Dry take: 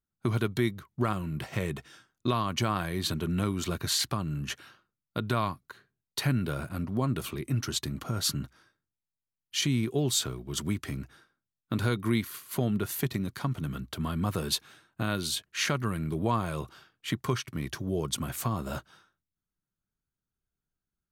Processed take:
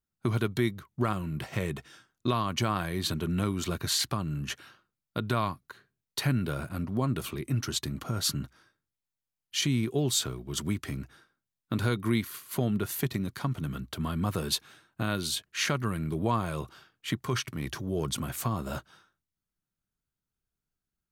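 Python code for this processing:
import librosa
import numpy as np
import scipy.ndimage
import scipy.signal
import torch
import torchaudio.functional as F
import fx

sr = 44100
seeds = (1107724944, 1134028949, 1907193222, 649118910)

y = fx.transient(x, sr, attack_db=-3, sustain_db=5, at=(17.19, 18.25))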